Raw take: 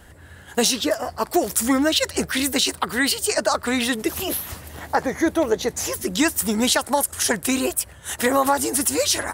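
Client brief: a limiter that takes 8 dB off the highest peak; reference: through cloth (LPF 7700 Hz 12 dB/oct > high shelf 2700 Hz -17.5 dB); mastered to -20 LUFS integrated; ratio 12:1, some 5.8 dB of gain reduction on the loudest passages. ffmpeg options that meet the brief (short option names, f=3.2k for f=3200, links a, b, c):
-af "acompressor=threshold=-20dB:ratio=12,alimiter=limit=-17dB:level=0:latency=1,lowpass=7.7k,highshelf=f=2.7k:g=-17.5,volume=11dB"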